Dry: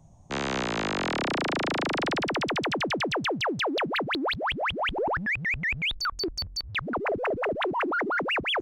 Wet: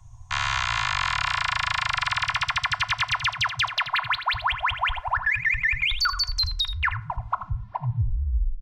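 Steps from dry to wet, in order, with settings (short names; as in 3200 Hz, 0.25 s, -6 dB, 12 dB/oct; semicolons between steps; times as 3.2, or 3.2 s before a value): tape stop at the end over 2.41 s; elliptic band-stop 120–980 Hz, stop band 50 dB; high shelf 5400 Hz -7 dB; comb 2.9 ms, depth 65%; compressor, threshold -29 dBFS, peak gain reduction 6 dB; echo 81 ms -10.5 dB; FDN reverb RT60 0.61 s, low-frequency decay 1×, high-frequency decay 0.55×, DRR 13.5 dB; gain +8.5 dB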